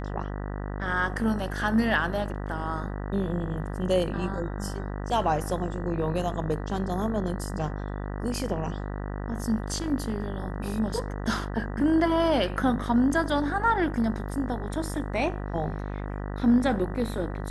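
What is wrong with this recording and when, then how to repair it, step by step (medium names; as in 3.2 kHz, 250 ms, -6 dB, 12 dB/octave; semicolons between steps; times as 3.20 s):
buzz 50 Hz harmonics 39 -33 dBFS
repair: de-hum 50 Hz, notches 39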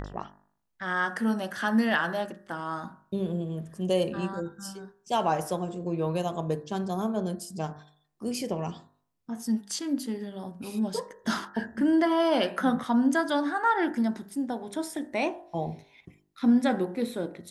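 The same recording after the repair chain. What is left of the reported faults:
nothing left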